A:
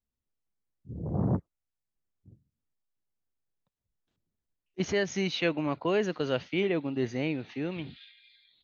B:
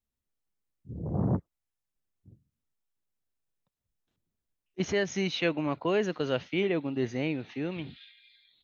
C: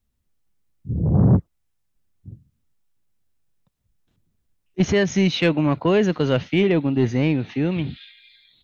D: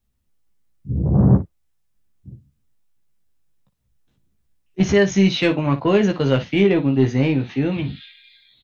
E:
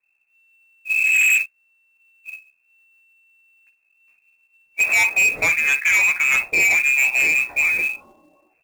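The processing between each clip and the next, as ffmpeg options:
-af "bandreject=f=4600:w=17"
-af "bass=f=250:g=8,treble=f=4000:g=-1,asoftclip=type=tanh:threshold=0.15,volume=2.66"
-af "aecho=1:1:15|57:0.596|0.224"
-af "lowpass=f=2300:t=q:w=0.5098,lowpass=f=2300:t=q:w=0.6013,lowpass=f=2300:t=q:w=0.9,lowpass=f=2300:t=q:w=2.563,afreqshift=-2700,acrusher=bits=4:mode=log:mix=0:aa=0.000001,asoftclip=type=hard:threshold=0.158,volume=1.33"

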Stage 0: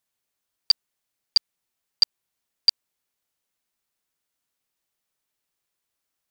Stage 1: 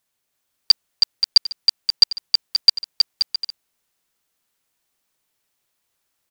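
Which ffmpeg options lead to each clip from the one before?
-af "aecho=1:1:320|528|663.2|751.1|808.2:0.631|0.398|0.251|0.158|0.1,volume=1.88"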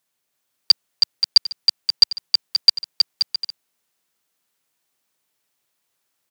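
-af "highpass=110"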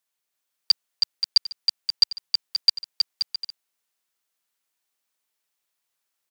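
-af "lowshelf=f=440:g=-8.5,volume=0.531"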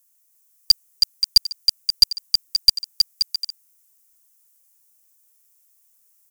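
-af "aexciter=amount=3.3:drive=9.2:freq=5600,aeval=exprs='0.841*(cos(1*acos(clip(val(0)/0.841,-1,1)))-cos(1*PI/2))+0.0668*(cos(2*acos(clip(val(0)/0.841,-1,1)))-cos(2*PI/2))':c=same,volume=1.12"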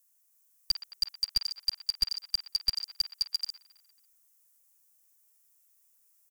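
-filter_complex "[0:a]acrossover=split=600|3000[s0][s1][s2];[s1]aecho=1:1:50|120|218|355.2|547.3:0.631|0.398|0.251|0.158|0.1[s3];[s2]alimiter=limit=0.211:level=0:latency=1:release=53[s4];[s0][s3][s4]amix=inputs=3:normalize=0,volume=0.501"

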